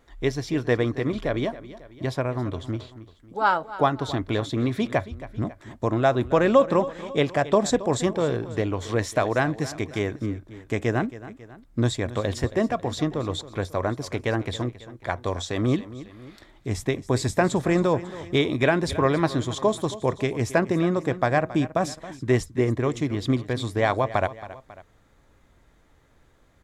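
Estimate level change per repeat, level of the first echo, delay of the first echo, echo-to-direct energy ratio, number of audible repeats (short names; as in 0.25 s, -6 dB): -5.5 dB, -16.0 dB, 0.273 s, -15.0 dB, 2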